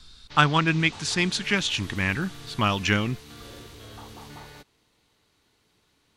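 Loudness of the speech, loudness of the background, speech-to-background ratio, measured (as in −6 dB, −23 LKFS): −24.0 LKFS, −42.5 LKFS, 18.5 dB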